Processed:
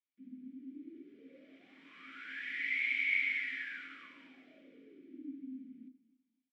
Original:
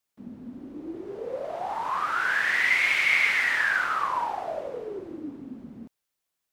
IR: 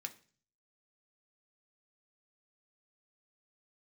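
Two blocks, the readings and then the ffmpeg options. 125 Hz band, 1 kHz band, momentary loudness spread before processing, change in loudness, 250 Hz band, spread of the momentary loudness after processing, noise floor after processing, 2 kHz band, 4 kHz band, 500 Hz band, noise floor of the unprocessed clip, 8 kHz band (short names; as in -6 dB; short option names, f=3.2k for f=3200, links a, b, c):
n/a, -32.5 dB, 21 LU, -11.0 dB, -8.5 dB, 24 LU, -84 dBFS, -12.5 dB, -14.5 dB, under -25 dB, -83 dBFS, under -25 dB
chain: -filter_complex "[0:a]asplit=3[a][b][c];[a]bandpass=f=270:t=q:w=8,volume=0dB[d];[b]bandpass=f=2.29k:t=q:w=8,volume=-6dB[e];[c]bandpass=f=3.01k:t=q:w=8,volume=-9dB[f];[d][e][f]amix=inputs=3:normalize=0,aecho=1:1:251|502|753:0.106|0.0328|0.0102[g];[1:a]atrim=start_sample=2205[h];[g][h]afir=irnorm=-1:irlink=0"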